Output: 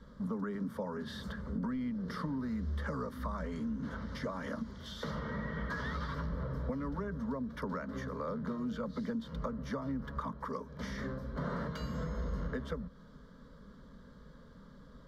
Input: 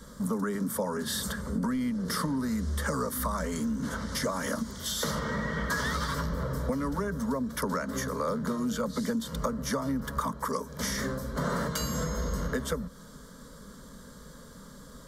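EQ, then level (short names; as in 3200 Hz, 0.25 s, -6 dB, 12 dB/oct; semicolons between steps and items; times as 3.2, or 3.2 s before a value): air absorption 320 m; low shelf 210 Hz +3.5 dB; high shelf 4400 Hz +8.5 dB; -7.5 dB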